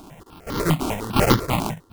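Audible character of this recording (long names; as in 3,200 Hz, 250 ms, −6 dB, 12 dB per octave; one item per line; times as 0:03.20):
a buzz of ramps at a fixed pitch in blocks of 32 samples
sample-and-hold tremolo 4.3 Hz, depth 90%
aliases and images of a low sample rate 1,700 Hz, jitter 20%
notches that jump at a steady rate 10 Hz 510–2,500 Hz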